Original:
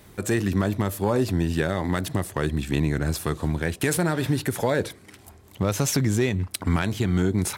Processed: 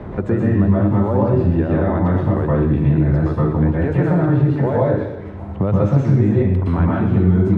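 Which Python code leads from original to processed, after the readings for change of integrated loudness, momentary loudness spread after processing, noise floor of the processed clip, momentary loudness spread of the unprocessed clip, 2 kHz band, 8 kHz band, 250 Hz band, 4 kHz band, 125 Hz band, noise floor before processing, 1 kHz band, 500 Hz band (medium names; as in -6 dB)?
+8.0 dB, 4 LU, -29 dBFS, 4 LU, -2.0 dB, under -25 dB, +8.5 dB, under -10 dB, +10.0 dB, -51 dBFS, +5.5 dB, +7.0 dB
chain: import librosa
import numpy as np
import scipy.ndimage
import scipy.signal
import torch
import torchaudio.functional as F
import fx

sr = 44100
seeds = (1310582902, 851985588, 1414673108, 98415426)

y = scipy.signal.sosfilt(scipy.signal.butter(2, 1000.0, 'lowpass', fs=sr, output='sos'), x)
y = fx.rev_plate(y, sr, seeds[0], rt60_s=0.72, hf_ratio=1.0, predelay_ms=105, drr_db=-6.5)
y = fx.band_squash(y, sr, depth_pct=70)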